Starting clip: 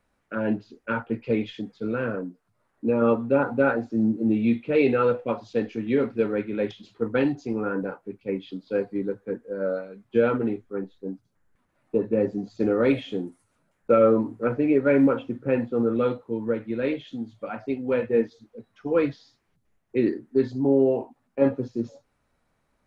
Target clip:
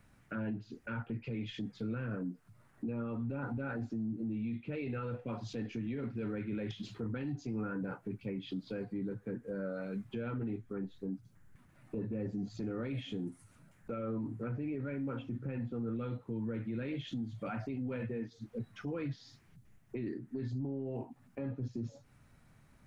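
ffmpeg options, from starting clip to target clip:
-af "equalizer=f=125:t=o:w=1:g=9,equalizer=f=500:t=o:w=1:g=-7,equalizer=f=1k:t=o:w=1:g=-4,equalizer=f=4k:t=o:w=1:g=-3,acompressor=threshold=-38dB:ratio=6,alimiter=level_in=14.5dB:limit=-24dB:level=0:latency=1:release=10,volume=-14.5dB,volume=7.5dB"

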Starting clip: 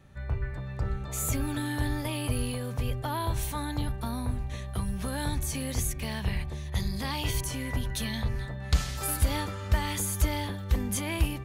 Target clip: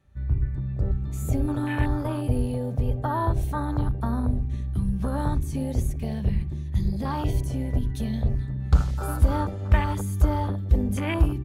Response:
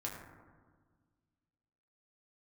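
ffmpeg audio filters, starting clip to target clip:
-filter_complex "[0:a]asplit=2[a][b];[b]adelay=60,lowpass=f=1.3k:p=1,volume=-12dB,asplit=2[c][d];[d]adelay=60,lowpass=f=1.3k:p=1,volume=0.53,asplit=2[e][f];[f]adelay=60,lowpass=f=1.3k:p=1,volume=0.53,asplit=2[g][h];[h]adelay=60,lowpass=f=1.3k:p=1,volume=0.53,asplit=2[i][j];[j]adelay=60,lowpass=f=1.3k:p=1,volume=0.53,asplit=2[k][l];[l]adelay=60,lowpass=f=1.3k:p=1,volume=0.53[m];[a][c][e][g][i][k][m]amix=inputs=7:normalize=0,afwtdn=0.02,volume=6dB"

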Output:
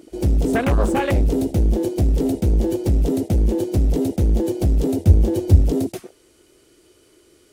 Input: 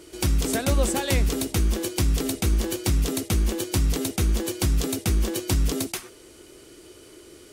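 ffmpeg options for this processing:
-filter_complex "[0:a]aeval=exprs='0.316*(cos(1*acos(clip(val(0)/0.316,-1,1)))-cos(1*PI/2))+0.126*(cos(5*acos(clip(val(0)/0.316,-1,1)))-cos(5*PI/2))':c=same,afwtdn=0.0708,asettb=1/sr,asplit=3[a][b][c];[a]atrim=end=4.994[d];[b]atrim=start=4.99:end=5.62,asetpts=PTS-STARTPTS,afade=t=in:d=0.004:c=qsin,afade=t=out:st=0.626:d=0.004:c=qsin,equalizer=f=86:w=3.2:g=14.5[e];[c]atrim=start=5.616[f];[d][e]acrossfade=d=0.004:c1=hsin:c2=qsin[g];[g][f]acrossfade=d=0.004:c1=qsin:c2=hsin"

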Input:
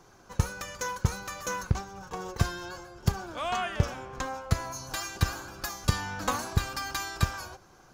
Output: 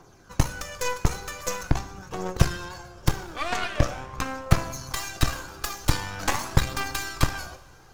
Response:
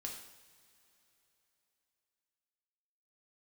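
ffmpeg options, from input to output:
-filter_complex "[0:a]aphaser=in_gain=1:out_gain=1:delay=2.6:decay=0.43:speed=0.44:type=triangular,aeval=exprs='0.447*(cos(1*acos(clip(val(0)/0.447,-1,1)))-cos(1*PI/2))+0.112*(cos(8*acos(clip(val(0)/0.447,-1,1)))-cos(8*PI/2))':c=same,asplit=2[a][b];[1:a]atrim=start_sample=2205[c];[b][c]afir=irnorm=-1:irlink=0,volume=-2.5dB[d];[a][d]amix=inputs=2:normalize=0,volume=-2.5dB"

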